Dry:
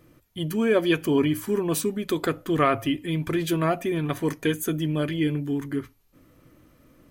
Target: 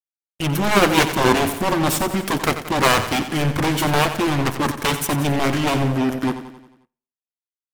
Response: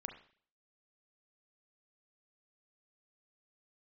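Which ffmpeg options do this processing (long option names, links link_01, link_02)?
-filter_complex "[0:a]acrusher=bits=4:mix=0:aa=0.5,aeval=exprs='0.355*(cos(1*acos(clip(val(0)/0.355,-1,1)))-cos(1*PI/2))+0.178*(cos(7*acos(clip(val(0)/0.355,-1,1)))-cos(7*PI/2))':channel_layout=same,aecho=1:1:82|164|246|328|410|492:0.282|0.149|0.0792|0.042|0.0222|0.0118,asplit=2[link_01][link_02];[1:a]atrim=start_sample=2205,lowpass=3400[link_03];[link_02][link_03]afir=irnorm=-1:irlink=0,volume=-12.5dB[link_04];[link_01][link_04]amix=inputs=2:normalize=0,asetrate=40517,aresample=44100,volume=1.5dB"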